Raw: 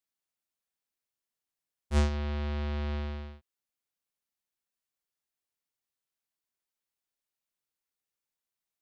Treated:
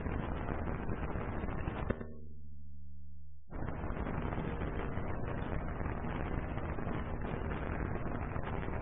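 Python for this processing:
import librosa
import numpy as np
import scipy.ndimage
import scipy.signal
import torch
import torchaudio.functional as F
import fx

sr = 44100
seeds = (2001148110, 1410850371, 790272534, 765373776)

p1 = fx.bin_compress(x, sr, power=0.2)
p2 = fx.lpc_vocoder(p1, sr, seeds[0], excitation='pitch_kept', order=10)
p3 = fx.comb_fb(p2, sr, f0_hz=410.0, decay_s=0.3, harmonics='all', damping=0.0, mix_pct=30)
p4 = fx.gate_flip(p3, sr, shuts_db=-25.0, range_db=-28)
p5 = fx.quant_dither(p4, sr, seeds[1], bits=6, dither='none')
p6 = p4 + F.gain(torch.from_numpy(p5), -5.5).numpy()
p7 = scipy.signal.sosfilt(scipy.signal.butter(2, 2200.0, 'lowpass', fs=sr, output='sos'), p6)
p8 = fx.comb_fb(p7, sr, f0_hz=78.0, decay_s=1.5, harmonics='all', damping=0.0, mix_pct=70)
p9 = fx.echo_feedback(p8, sr, ms=107, feedback_pct=23, wet_db=-11.0)
p10 = fx.spec_gate(p9, sr, threshold_db=-30, keep='strong')
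y = F.gain(torch.from_numpy(p10), 14.0).numpy()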